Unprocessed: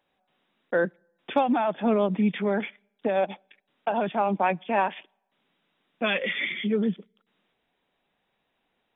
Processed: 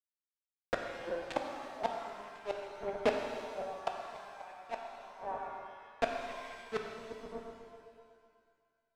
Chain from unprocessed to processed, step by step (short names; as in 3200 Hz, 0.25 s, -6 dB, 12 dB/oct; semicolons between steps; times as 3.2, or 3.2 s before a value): elliptic high-pass 230 Hz, stop band 40 dB; low shelf 390 Hz -12 dB; bit-crush 5-bit; Bessel low-pass 3200 Hz, order 2; on a send: dark delay 0.123 s, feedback 44%, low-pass 820 Hz, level -4 dB; on the sum: dynamic EQ 730 Hz, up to +6 dB, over -40 dBFS, Q 2.9; reverse; compressor 6:1, threshold -38 dBFS, peak gain reduction 18.5 dB; reverse; flipped gate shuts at -33 dBFS, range -31 dB; shimmer reverb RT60 1.9 s, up +7 st, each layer -8 dB, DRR 2 dB; gain +15 dB